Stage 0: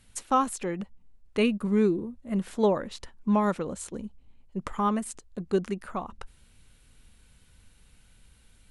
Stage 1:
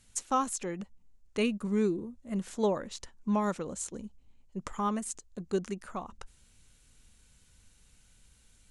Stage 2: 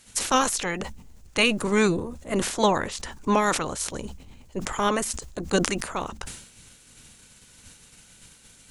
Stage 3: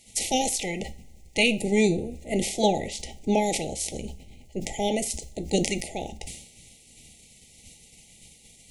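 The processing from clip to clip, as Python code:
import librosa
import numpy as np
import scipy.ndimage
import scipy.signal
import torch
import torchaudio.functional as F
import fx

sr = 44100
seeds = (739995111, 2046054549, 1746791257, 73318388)

y1 = fx.peak_eq(x, sr, hz=6700.0, db=10.0, octaves=0.85)
y1 = y1 * 10.0 ** (-5.0 / 20.0)
y2 = fx.spec_clip(y1, sr, under_db=18)
y2 = fx.sustainer(y2, sr, db_per_s=78.0)
y2 = y2 * 10.0 ** (7.5 / 20.0)
y3 = fx.brickwall_bandstop(y2, sr, low_hz=870.0, high_hz=1900.0)
y3 = fx.rev_double_slope(y3, sr, seeds[0], early_s=0.33, late_s=2.3, knee_db=-27, drr_db=10.0)
y3 = y3 * 10.0 ** (-1.0 / 20.0)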